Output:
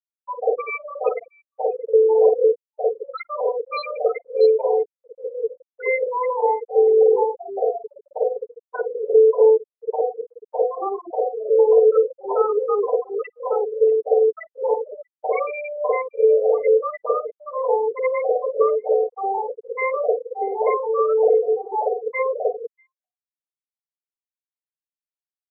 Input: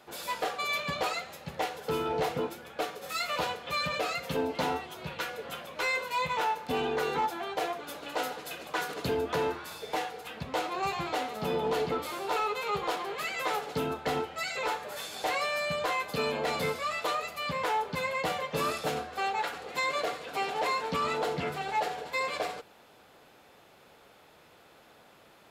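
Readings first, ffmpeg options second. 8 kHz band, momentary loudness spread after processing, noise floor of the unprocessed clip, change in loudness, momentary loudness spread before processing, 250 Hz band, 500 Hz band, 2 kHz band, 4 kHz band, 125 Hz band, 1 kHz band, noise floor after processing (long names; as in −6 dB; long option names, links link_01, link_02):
below −35 dB, 13 LU, −58 dBFS, +11.5 dB, 7 LU, can't be measured, +16.5 dB, −1.0 dB, below −10 dB, below −30 dB, +4.5 dB, below −85 dBFS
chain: -filter_complex "[0:a]highpass=frequency=460:width_type=q:width=4.9,afftfilt=real='re*gte(hypot(re,im),0.2)':imag='im*gte(hypot(re,im),0.2)':win_size=1024:overlap=0.75,acrossover=split=700|4800[link_01][link_02][link_03];[link_01]adelay=50[link_04];[link_03]adelay=640[link_05];[link_04][link_02][link_05]amix=inputs=3:normalize=0,volume=6.5dB"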